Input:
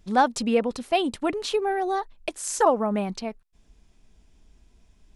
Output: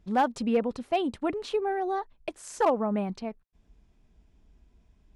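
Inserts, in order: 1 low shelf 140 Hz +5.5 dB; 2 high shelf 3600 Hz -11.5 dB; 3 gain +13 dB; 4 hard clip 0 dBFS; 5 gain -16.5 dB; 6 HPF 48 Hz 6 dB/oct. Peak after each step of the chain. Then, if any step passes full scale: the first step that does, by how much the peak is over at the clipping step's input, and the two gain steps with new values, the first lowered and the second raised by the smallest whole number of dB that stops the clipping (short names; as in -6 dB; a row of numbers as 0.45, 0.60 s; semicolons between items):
-7.0, -8.0, +5.0, 0.0, -16.5, -15.5 dBFS; step 3, 5.0 dB; step 3 +8 dB, step 5 -11.5 dB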